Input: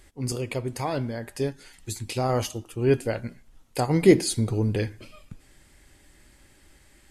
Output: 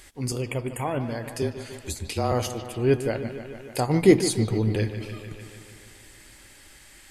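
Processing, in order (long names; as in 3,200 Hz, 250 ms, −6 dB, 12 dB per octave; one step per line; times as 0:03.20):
0:00.42–0:01.01: time-frequency box erased 3,400–6,800 Hz
0:01.42–0:02.32: frequency shifter −27 Hz
on a send: bucket-brigade delay 149 ms, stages 4,096, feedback 67%, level −12 dB
on the sum: one half of a high-frequency compander encoder only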